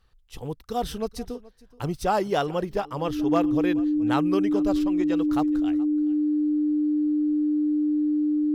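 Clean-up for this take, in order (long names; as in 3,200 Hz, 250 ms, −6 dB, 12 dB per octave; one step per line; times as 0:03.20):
clipped peaks rebuilt −12.5 dBFS
notch filter 300 Hz, Q 30
echo removal 426 ms −21.5 dB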